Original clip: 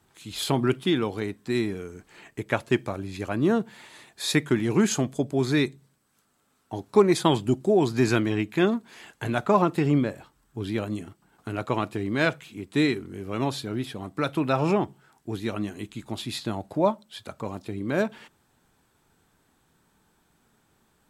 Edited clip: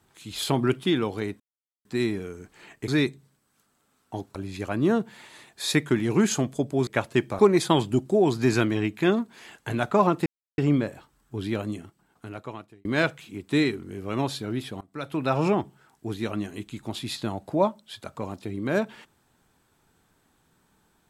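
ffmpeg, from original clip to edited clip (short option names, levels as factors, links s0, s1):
-filter_complex "[0:a]asplit=9[s0][s1][s2][s3][s4][s5][s6][s7][s8];[s0]atrim=end=1.4,asetpts=PTS-STARTPTS,afade=t=out:st=1.396:d=0.004:c=hsin,apad=pad_dur=0.45[s9];[s1]atrim=start=1.4:end=2.432,asetpts=PTS-STARTPTS,afade=t=in:d=0.004:c=hsin[s10];[s2]atrim=start=5.468:end=6.942[s11];[s3]atrim=start=2.948:end=5.472[s12];[s4]atrim=start=2.428:end=2.952[s13];[s5]atrim=start=6.938:end=9.81,asetpts=PTS-STARTPTS,afade=t=out:st=2.868:d=0.004:c=hsin,apad=pad_dur=0.32[s14];[s6]atrim=start=9.81:end=12.08,asetpts=PTS-STARTPTS,afade=t=in:d=0.004:c=hsin,afade=t=out:st=1.04:d=1.23[s15];[s7]atrim=start=12.08:end=14.04,asetpts=PTS-STARTPTS,afade=t=in:d=0.004:c=hsin,afade=t=out:st=1.956:d=0.004:c=hsin:silence=0.0749894[s16];[s8]atrim=start=14.04,asetpts=PTS-STARTPTS,afade=t=in:d=0.53:silence=0.0749894[s17];[s9][s10]concat=n=2:v=0:a=1[s18];[s18][s11]acrossfade=d=0.004:c1=hsin:c2=hsin[s19];[s19][s12]acrossfade=d=0.004:c1=hsin:c2=hsin[s20];[s20][s13]acrossfade=d=0.004:c1=hsin:c2=hsin[s21];[s14][s15][s16][s17]concat=n=4:v=0:a=1[s22];[s21][s22]acrossfade=d=0.004:c1=hsin:c2=hsin"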